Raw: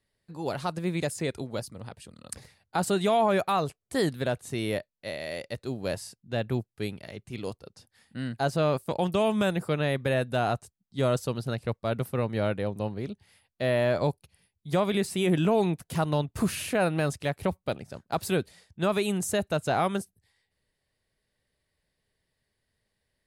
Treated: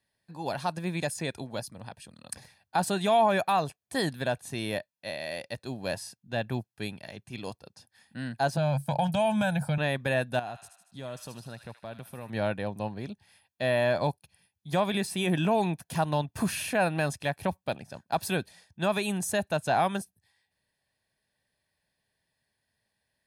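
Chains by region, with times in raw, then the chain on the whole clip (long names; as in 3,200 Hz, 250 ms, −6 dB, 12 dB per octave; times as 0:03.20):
0:08.57–0:09.78: parametric band 140 Hz +11.5 dB 0.33 octaves + comb filter 1.3 ms, depth 83% + downward compressor, threshold −21 dBFS
0:10.39–0:12.30: downward compressor 2.5 to 1, threshold −40 dBFS + delay with a high-pass on its return 77 ms, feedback 57%, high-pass 1,500 Hz, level −7 dB
whole clip: high-pass filter 200 Hz 6 dB per octave; notch filter 7,500 Hz, Q 12; comb filter 1.2 ms, depth 46%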